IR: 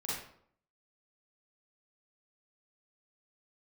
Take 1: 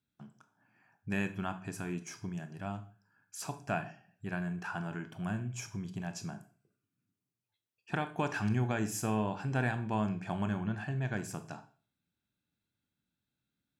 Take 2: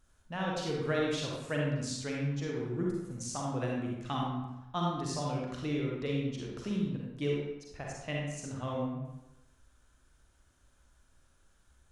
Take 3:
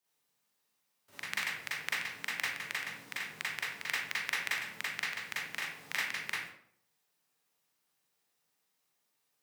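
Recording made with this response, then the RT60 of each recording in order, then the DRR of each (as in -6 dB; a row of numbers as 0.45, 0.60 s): 3; 0.40, 1.0, 0.65 s; 9.0, -3.0, -8.5 dB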